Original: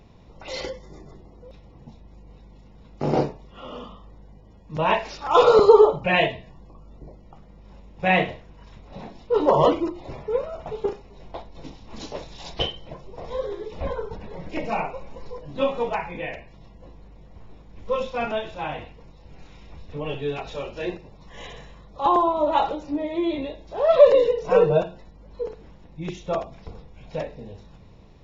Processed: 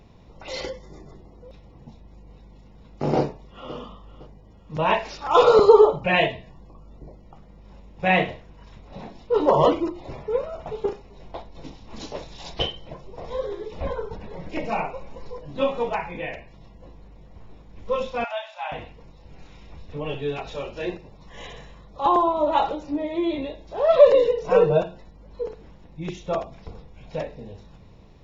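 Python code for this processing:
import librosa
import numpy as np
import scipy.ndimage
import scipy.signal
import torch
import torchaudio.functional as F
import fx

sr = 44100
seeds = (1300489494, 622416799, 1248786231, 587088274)

y = fx.echo_throw(x, sr, start_s=3.18, length_s=0.57, ms=510, feedback_pct=35, wet_db=-15.5)
y = fx.cheby_ripple_highpass(y, sr, hz=580.0, ripple_db=3, at=(18.24, 18.72))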